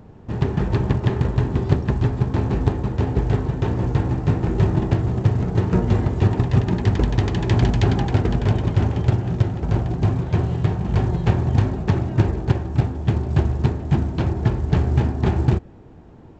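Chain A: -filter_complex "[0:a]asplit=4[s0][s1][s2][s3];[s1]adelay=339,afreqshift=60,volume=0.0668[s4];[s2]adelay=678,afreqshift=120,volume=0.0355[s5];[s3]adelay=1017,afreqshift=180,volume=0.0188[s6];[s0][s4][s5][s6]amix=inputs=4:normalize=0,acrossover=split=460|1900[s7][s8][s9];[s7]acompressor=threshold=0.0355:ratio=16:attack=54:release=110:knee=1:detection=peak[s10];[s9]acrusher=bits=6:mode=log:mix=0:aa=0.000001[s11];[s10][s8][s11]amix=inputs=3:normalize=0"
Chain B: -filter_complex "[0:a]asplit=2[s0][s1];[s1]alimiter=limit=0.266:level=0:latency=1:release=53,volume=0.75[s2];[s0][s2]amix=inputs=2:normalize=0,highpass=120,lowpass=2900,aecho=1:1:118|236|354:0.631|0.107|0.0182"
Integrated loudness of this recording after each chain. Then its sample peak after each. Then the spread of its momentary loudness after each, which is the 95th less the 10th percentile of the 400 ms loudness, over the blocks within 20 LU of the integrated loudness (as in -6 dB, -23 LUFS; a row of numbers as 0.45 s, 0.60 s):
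-28.0 LUFS, -18.5 LUFS; -9.5 dBFS, -2.0 dBFS; 2 LU, 3 LU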